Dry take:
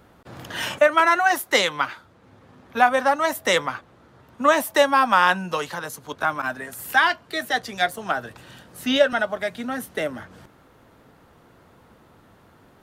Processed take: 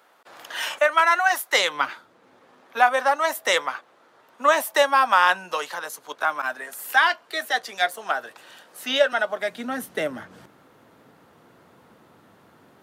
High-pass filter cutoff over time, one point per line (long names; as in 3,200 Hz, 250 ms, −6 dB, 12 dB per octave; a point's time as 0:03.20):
0:01.50 670 Hz
0:01.87 220 Hz
0:02.77 490 Hz
0:09.06 490 Hz
0:09.94 140 Hz